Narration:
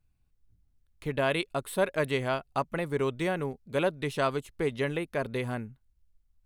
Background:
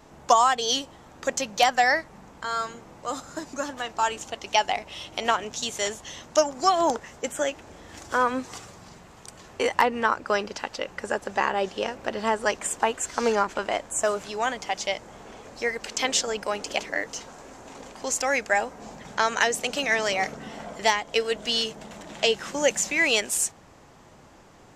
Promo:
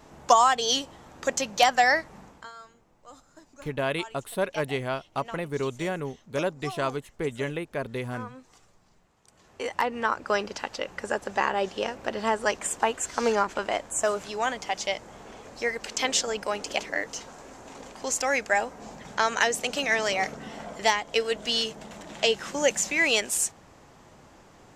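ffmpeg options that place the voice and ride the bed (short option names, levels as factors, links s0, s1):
-filter_complex "[0:a]adelay=2600,volume=0.944[s0];[1:a]volume=7.08,afade=t=out:st=2.2:d=0.32:silence=0.125893,afade=t=in:st=9.22:d=1.13:silence=0.141254[s1];[s0][s1]amix=inputs=2:normalize=0"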